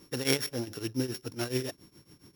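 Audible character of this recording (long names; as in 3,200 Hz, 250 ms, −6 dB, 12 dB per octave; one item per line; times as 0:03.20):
a buzz of ramps at a fixed pitch in blocks of 8 samples
tremolo triangle 7.2 Hz, depth 90%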